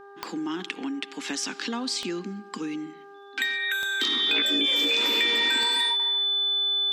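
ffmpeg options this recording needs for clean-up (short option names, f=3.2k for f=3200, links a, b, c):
-af "adeclick=t=4,bandreject=f=400:t=h:w=4,bandreject=f=800:t=h:w=4,bandreject=f=1.2k:t=h:w=4,bandreject=f=1.6k:t=h:w=4,bandreject=f=3.5k:w=30"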